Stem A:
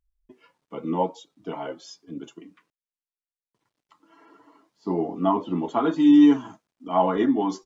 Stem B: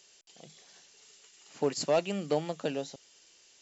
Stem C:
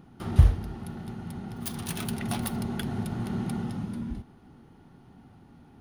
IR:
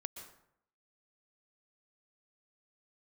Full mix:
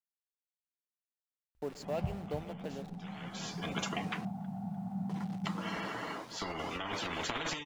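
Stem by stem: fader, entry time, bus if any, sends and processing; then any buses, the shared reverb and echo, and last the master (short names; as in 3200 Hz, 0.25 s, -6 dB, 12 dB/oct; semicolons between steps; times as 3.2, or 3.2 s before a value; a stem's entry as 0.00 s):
-4.5 dB, 1.55 s, no send, no echo send, negative-ratio compressor -28 dBFS, ratio -1; spectral compressor 10:1; auto duck -19 dB, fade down 0.30 s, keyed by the second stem
-12.5 dB, 0.00 s, send -5 dB, no echo send, level-crossing sampler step -35.5 dBFS
-1.0 dB, 1.65 s, no send, echo send -8.5 dB, double band-pass 370 Hz, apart 2 oct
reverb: on, RT60 0.70 s, pre-delay 0.113 s
echo: echo 0.299 s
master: high shelf 4300 Hz -9.5 dB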